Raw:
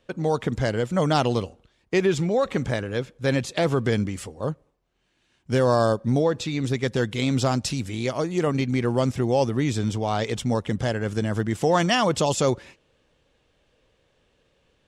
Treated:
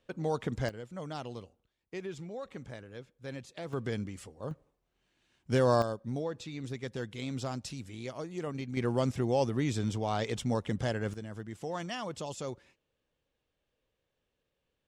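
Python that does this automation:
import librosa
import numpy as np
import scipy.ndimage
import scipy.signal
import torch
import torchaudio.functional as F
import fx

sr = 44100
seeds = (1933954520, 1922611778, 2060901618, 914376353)

y = fx.gain(x, sr, db=fx.steps((0.0, -8.5), (0.69, -19.0), (3.73, -12.0), (4.51, -5.5), (5.82, -14.0), (8.77, -7.0), (11.14, -17.0)))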